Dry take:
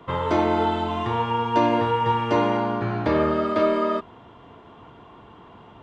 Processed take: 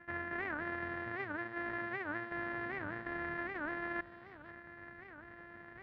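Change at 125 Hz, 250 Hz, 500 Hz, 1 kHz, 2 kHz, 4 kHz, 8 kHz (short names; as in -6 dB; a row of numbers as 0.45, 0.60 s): -22.5 dB, -19.0 dB, -22.0 dB, -21.5 dB, -3.5 dB, -25.0 dB, n/a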